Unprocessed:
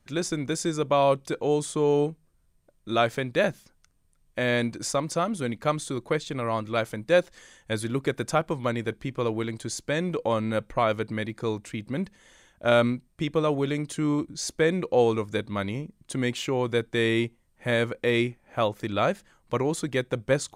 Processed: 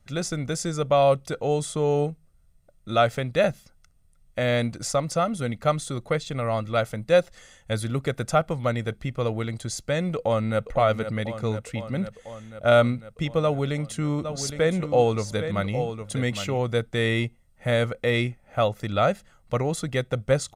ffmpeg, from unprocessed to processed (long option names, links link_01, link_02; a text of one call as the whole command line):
ffmpeg -i in.wav -filter_complex "[0:a]asplit=2[link_01][link_02];[link_02]afade=type=in:start_time=10.16:duration=0.01,afade=type=out:start_time=10.69:duration=0.01,aecho=0:1:500|1000|1500|2000|2500|3000|3500|4000|4500|5000|5500|6000:0.354813|0.26611|0.199583|0.149687|0.112265|0.0841989|0.0631492|0.0473619|0.0355214|0.0266411|0.0199808|0.0149856[link_03];[link_01][link_03]amix=inputs=2:normalize=0,asplit=3[link_04][link_05][link_06];[link_04]afade=type=out:start_time=14.23:duration=0.02[link_07];[link_05]aecho=1:1:813:0.355,afade=type=in:start_time=14.23:duration=0.02,afade=type=out:start_time=16.57:duration=0.02[link_08];[link_06]afade=type=in:start_time=16.57:duration=0.02[link_09];[link_07][link_08][link_09]amix=inputs=3:normalize=0,lowshelf=frequency=220:gain=4,aecho=1:1:1.5:0.51" out.wav